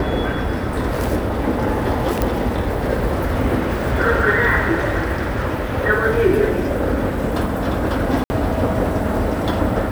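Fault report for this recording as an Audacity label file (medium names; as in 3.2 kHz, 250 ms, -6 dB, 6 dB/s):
2.220000	2.220000	pop -5 dBFS
8.240000	8.300000	dropout 60 ms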